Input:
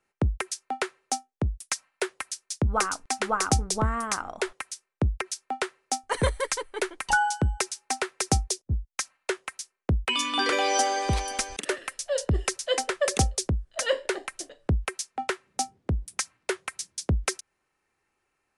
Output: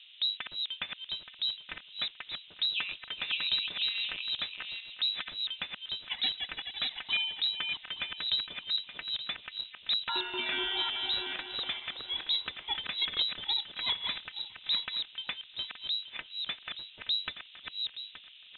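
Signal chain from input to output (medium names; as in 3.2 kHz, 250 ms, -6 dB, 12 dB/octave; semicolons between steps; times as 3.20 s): backward echo that repeats 437 ms, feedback 43%, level -4.5 dB; band noise 94–1200 Hz -46 dBFS; frequency inversion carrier 3.9 kHz; trim -8.5 dB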